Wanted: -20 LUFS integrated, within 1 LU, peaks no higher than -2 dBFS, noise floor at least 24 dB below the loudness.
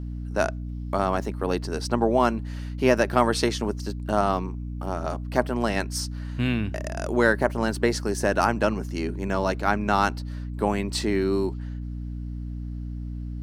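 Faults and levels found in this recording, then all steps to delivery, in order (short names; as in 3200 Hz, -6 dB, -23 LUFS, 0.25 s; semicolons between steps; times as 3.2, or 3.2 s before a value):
hum 60 Hz; harmonics up to 300 Hz; hum level -30 dBFS; loudness -26.0 LUFS; peak -4.5 dBFS; loudness target -20.0 LUFS
-> notches 60/120/180/240/300 Hz; gain +6 dB; limiter -2 dBFS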